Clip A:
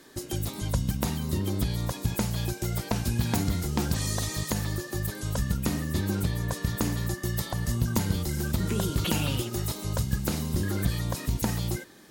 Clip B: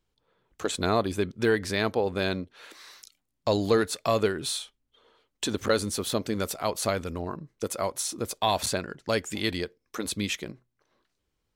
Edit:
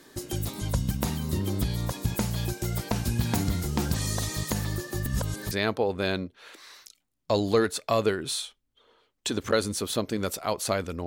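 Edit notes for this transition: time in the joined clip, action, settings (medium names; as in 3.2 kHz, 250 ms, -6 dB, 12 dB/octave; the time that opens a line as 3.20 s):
clip A
5.06–5.51 s: reverse
5.51 s: go over to clip B from 1.68 s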